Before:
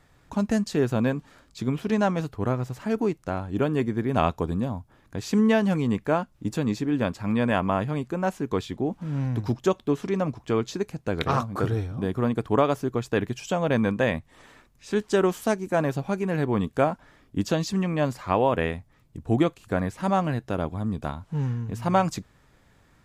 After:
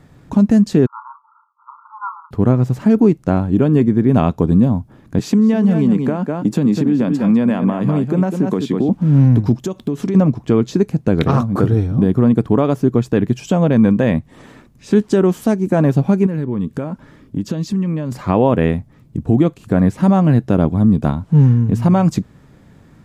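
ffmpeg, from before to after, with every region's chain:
ffmpeg -i in.wav -filter_complex "[0:a]asettb=1/sr,asplit=3[link_01][link_02][link_03];[link_01]atrim=end=0.864[link_04];[link_02]atrim=start=0.86:end=2.31,asetpts=PTS-STARTPTS,afade=type=in:duration=0.004:curve=qsin,afade=type=out:start_time=1.446:duration=0.004:curve=qsin,asuperpass=centerf=1100:order=20:qfactor=2,asplit=2[link_05][link_06];[link_06]adelay=31,volume=-9.5dB[link_07];[link_05][link_07]amix=inputs=2:normalize=0,atrim=end_sample=63945[link_08];[link_03]atrim=start=2.306[link_09];[link_04][link_08]acrossfade=duration=0.004:curve1=hsin:curve2=qsin[link_10];[link_10][link_09]acrossfade=duration=0.004:curve1=qsin:curve2=hsin,asettb=1/sr,asplit=3[link_11][link_12][link_13];[link_11]atrim=end=5.194[link_14];[link_12]atrim=start=5.19:end=8.89,asetpts=PTS-STARTPTS,afade=type=in:duration=0.004:curve=qsin,afade=type=out:start_time=3.696:duration=0.004:curve=qsin,highpass=frequency=140:width=0.5412,highpass=frequency=140:width=1.3066,aecho=1:1:199:0.335,atrim=end_sample=163170,acompressor=threshold=-26dB:ratio=10:attack=3.2:release=140:knee=1:detection=peak[link_15];[link_13]atrim=start=8.886[link_16];[link_14][link_15]acrossfade=duration=0.004:curve1=hsin:curve2=qsin[link_17];[link_17][link_16]acrossfade=duration=0.004:curve1=qsin:curve2=hsin,asettb=1/sr,asplit=3[link_18][link_19][link_20];[link_18]atrim=end=9.554[link_21];[link_19]atrim=start=9.55:end=10.15,asetpts=PTS-STARTPTS,afade=type=in:duration=0.004:curve=qsin,afade=type=out:start_time=0.596:duration=0.004:curve=qsin,highshelf=frequency=4500:gain=7.5,acompressor=threshold=-31dB:ratio=8:attack=3.2:release=140:knee=1:detection=peak[link_22];[link_20]atrim=start=10.146[link_23];[link_21][link_22]acrossfade=duration=0.004:curve1=hsin:curve2=qsin[link_24];[link_24][link_23]acrossfade=duration=0.004:curve1=qsin:curve2=hsin,asettb=1/sr,asplit=3[link_25][link_26][link_27];[link_25]atrim=end=16.264[link_28];[link_26]atrim=start=16.26:end=18.12,asetpts=PTS-STARTPTS,afade=type=in:duration=0.004:curve=qsin,afade=type=out:start_time=1.856:duration=0.004:curve=qsin,bandreject=frequency=720:width=5.1,acompressor=threshold=-35dB:ratio=4:attack=3.2:release=140:knee=1:detection=peak[link_29];[link_27]atrim=start=18.116[link_30];[link_28][link_29]acrossfade=duration=0.004:curve1=hsin:curve2=qsin[link_31];[link_31][link_30]acrossfade=duration=0.004:curve1=qsin:curve2=hsin,equalizer=frequency=190:width_type=o:width=2.7:gain=13.5,alimiter=limit=-8.5dB:level=0:latency=1:release=214,volume=5dB" out.wav

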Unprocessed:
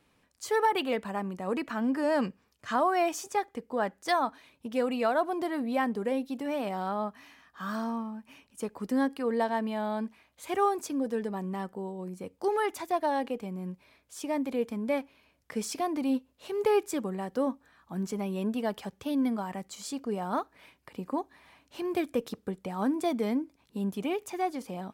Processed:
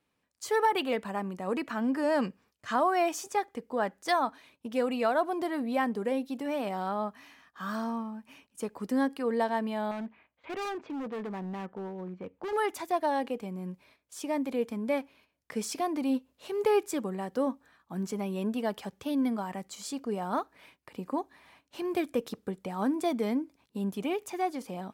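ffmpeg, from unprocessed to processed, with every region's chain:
ffmpeg -i in.wav -filter_complex "[0:a]asettb=1/sr,asplit=3[link_01][link_02][link_03];[link_01]atrim=end=9.914[link_04];[link_02]atrim=start=9.91:end=12.53,asetpts=PTS-STARTPTS,afade=type=in:duration=0.004:curve=qsin,afade=type=out:start_time=2.616:duration=0.004:curve=qsin,lowpass=frequency=2800:width=0.5412,lowpass=frequency=2800:width=1.3066,asoftclip=type=hard:threshold=-33dB[link_05];[link_03]atrim=start=12.526[link_06];[link_04][link_05]acrossfade=duration=0.004:curve1=hsin:curve2=qsin[link_07];[link_07][link_06]acrossfade=duration=0.004:curve1=qsin:curve2=hsin,agate=range=-10dB:threshold=-59dB:ratio=16:detection=peak,lowshelf=frequency=67:gain=-7.5" out.wav

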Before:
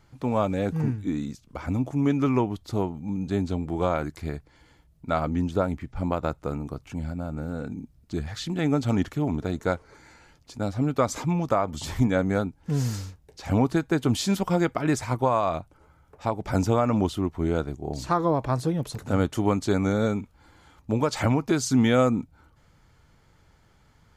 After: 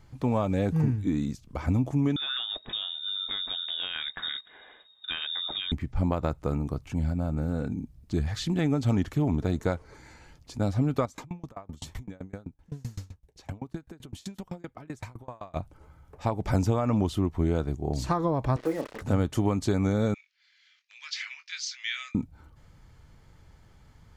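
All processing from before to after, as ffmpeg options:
ffmpeg -i in.wav -filter_complex "[0:a]asettb=1/sr,asplit=3[link_01][link_02][link_03];[link_01]atrim=end=2.164[link_04];[link_02]atrim=start=2.16:end=5.72,asetpts=PTS-STARTPTS,afade=type=in:duration=0.004:curve=qsin,afade=type=out:start_time=3.556:duration=0.004:curve=qsin,acompressor=threshold=-28dB:ratio=10:attack=3.2:release=140:knee=1:detection=peak,highshelf=frequency=1700:width_type=q:width=1.5:gain=11.5,lowpass=frequency=3200:width_type=q:width=0.5098,lowpass=frequency=3200:width_type=q:width=0.6013,lowpass=frequency=3200:width_type=q:width=0.9,lowpass=frequency=3200:width_type=q:width=2.563,afreqshift=-3800[link_05];[link_03]atrim=start=5.716[link_06];[link_04][link_05]acrossfade=duration=0.004:curve1=hsin:curve2=qsin[link_07];[link_07][link_06]acrossfade=duration=0.004:curve1=qsin:curve2=hsin,asettb=1/sr,asplit=3[link_08][link_09][link_10];[link_08]atrim=end=11.054[link_11];[link_09]atrim=start=11.05:end=15.56,asetpts=PTS-STARTPTS,afade=type=in:duration=0.004:curve=qsin,afade=type=out:start_time=4.506:duration=0.004:curve=qsin,acompressor=threshold=-31dB:ratio=5:attack=3.2:release=140:knee=1:detection=peak,bandreject=frequency=4900:width=16,aeval=exprs='val(0)*pow(10,-29*if(lt(mod(7.8*n/s,1),2*abs(7.8)/1000),1-mod(7.8*n/s,1)/(2*abs(7.8)/1000),(mod(7.8*n/s,1)-2*abs(7.8)/1000)/(1-2*abs(7.8)/1000))/20)':channel_layout=same[link_12];[link_10]atrim=start=15.556[link_13];[link_11][link_12]acrossfade=duration=0.004:curve1=hsin:curve2=qsin[link_14];[link_14][link_13]acrossfade=duration=0.004:curve1=qsin:curve2=hsin,asettb=1/sr,asplit=3[link_15][link_16][link_17];[link_15]atrim=end=18.564[link_18];[link_16]atrim=start=18.56:end=19.01,asetpts=PTS-STARTPTS,afade=type=in:duration=0.004:curve=qsin,afade=type=out:start_time=0.446:duration=0.004:curve=qsin,highpass=frequency=270:width=0.5412,highpass=frequency=270:width=1.3066,equalizer=frequency=560:width_type=q:width=4:gain=5,equalizer=frequency=1300:width_type=q:width=4:gain=6,equalizer=frequency=2000:width_type=q:width=4:gain=9,lowpass=frequency=2500:width=0.5412,lowpass=frequency=2500:width=1.3066,asplit=2[link_19][link_20];[link_20]adelay=31,volume=-8dB[link_21];[link_19][link_21]amix=inputs=2:normalize=0,atrim=end_sample=19845,acrusher=bits=6:mix=0:aa=0.5[link_22];[link_17]atrim=start=19.006[link_23];[link_18][link_22]acrossfade=duration=0.004:curve1=hsin:curve2=qsin[link_24];[link_24][link_23]acrossfade=duration=0.004:curve1=qsin:curve2=hsin,asettb=1/sr,asplit=3[link_25][link_26][link_27];[link_25]atrim=end=20.144[link_28];[link_26]atrim=start=20.14:end=22.15,asetpts=PTS-STARTPTS,afade=type=in:duration=0.004:curve=qsin,afade=type=out:start_time=2.006:duration=0.004:curve=qsin,asuperpass=centerf=3300:order=8:qfactor=0.83,asplit=2[link_29][link_30];[link_30]adelay=22,volume=-8dB[link_31];[link_29][link_31]amix=inputs=2:normalize=0,atrim=end_sample=88641[link_32];[link_27]atrim=start=22.146[link_33];[link_28][link_32]acrossfade=duration=0.004:curve1=hsin:curve2=qsin[link_34];[link_34][link_33]acrossfade=duration=0.004:curve1=qsin:curve2=hsin,acompressor=threshold=-23dB:ratio=6,lowshelf=frequency=150:gain=7,bandreject=frequency=1400:width=18" out.wav

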